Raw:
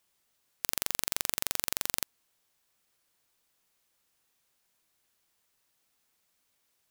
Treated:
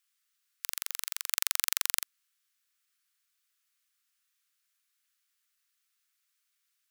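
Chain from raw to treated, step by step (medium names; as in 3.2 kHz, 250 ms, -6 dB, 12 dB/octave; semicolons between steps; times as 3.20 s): steep high-pass 1.2 kHz 48 dB/octave; 1.31–2.02 s: transient shaper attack +7 dB, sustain -5 dB; trim -3.5 dB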